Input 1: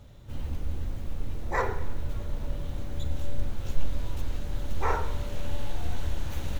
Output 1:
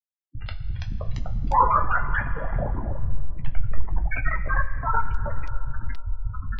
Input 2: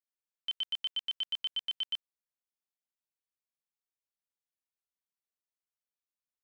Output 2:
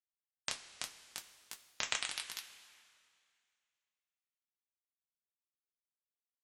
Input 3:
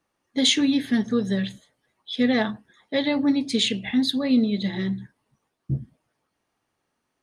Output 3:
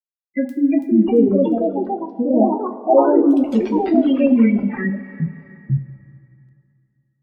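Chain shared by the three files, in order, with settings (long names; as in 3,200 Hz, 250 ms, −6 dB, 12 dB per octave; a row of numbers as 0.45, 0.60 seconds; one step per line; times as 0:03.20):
treble cut that deepens with the level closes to 650 Hz, closed at −17.5 dBFS
mains-hum notches 60/120/180/240/300/360/420 Hz
auto-filter low-pass sine 0.65 Hz 500–1,500 Hz
drawn EQ curve 160 Hz 0 dB, 690 Hz −1 dB, 2,700 Hz +15 dB, 4,000 Hz −3 dB, 6,300 Hz −18 dB
centre clipping without the shift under −26.5 dBFS
gate on every frequency bin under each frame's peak −10 dB strong
coupled-rooms reverb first 0.2 s, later 2.5 s, from −18 dB, DRR 1.5 dB
delay with pitch and tempo change per echo 409 ms, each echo +3 semitones, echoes 3
one half of a high-frequency compander encoder only
level +3.5 dB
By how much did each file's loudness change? +7.5, −6.5, +6.5 LU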